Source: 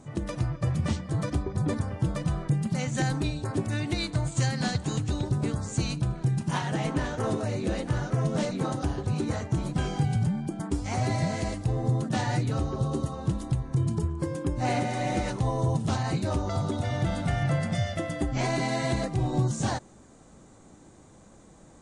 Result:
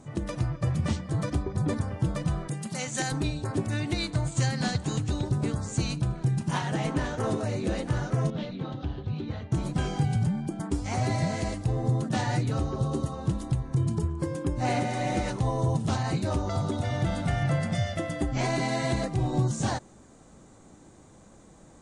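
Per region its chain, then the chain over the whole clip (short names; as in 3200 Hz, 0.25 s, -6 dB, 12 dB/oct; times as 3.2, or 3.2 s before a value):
2.48–3.12 HPF 370 Hz 6 dB/oct + high shelf 5400 Hz +8.5 dB
8.3–9.52 ladder low-pass 4000 Hz, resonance 55% + low shelf 300 Hz +8 dB
whole clip: dry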